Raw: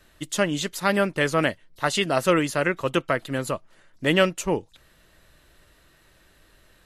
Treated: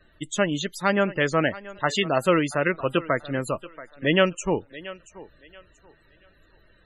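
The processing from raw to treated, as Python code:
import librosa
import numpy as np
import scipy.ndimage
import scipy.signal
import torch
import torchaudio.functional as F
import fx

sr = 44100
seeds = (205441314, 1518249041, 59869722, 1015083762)

y = fx.echo_thinned(x, sr, ms=681, feedback_pct=29, hz=310.0, wet_db=-16.5)
y = fx.spec_topn(y, sr, count=64)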